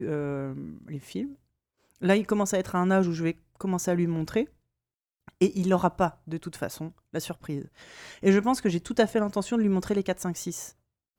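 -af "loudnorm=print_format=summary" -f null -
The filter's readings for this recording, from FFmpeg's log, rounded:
Input Integrated:    -27.4 LUFS
Input True Peak:      -7.7 dBTP
Input LRA:             2.3 LU
Input Threshold:     -38.0 LUFS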